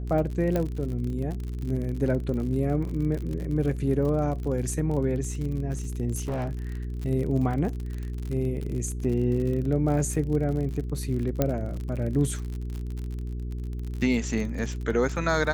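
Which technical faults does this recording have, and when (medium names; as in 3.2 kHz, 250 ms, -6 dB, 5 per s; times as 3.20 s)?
crackle 49 per s -32 dBFS
hum 60 Hz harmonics 7 -32 dBFS
0.56 s: pop -14 dBFS
2.89 s: dropout 2.2 ms
6.20–6.59 s: clipped -25.5 dBFS
11.42 s: pop -9 dBFS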